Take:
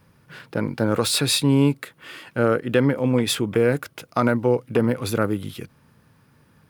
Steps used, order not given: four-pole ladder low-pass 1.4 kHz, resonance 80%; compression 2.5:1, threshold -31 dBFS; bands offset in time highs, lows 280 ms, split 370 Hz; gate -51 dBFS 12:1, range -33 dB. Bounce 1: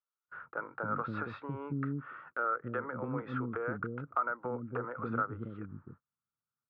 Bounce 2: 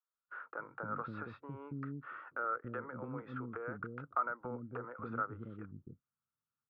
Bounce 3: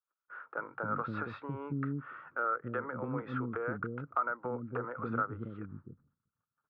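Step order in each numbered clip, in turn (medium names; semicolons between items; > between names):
four-pole ladder low-pass > compression > bands offset in time > gate; compression > four-pole ladder low-pass > gate > bands offset in time; gate > four-pole ladder low-pass > compression > bands offset in time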